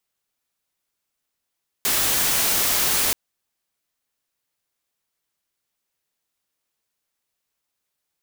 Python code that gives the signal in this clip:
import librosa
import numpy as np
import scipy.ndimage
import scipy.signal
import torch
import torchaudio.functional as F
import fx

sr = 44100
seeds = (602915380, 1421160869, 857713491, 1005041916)

y = fx.noise_colour(sr, seeds[0], length_s=1.28, colour='white', level_db=-20.5)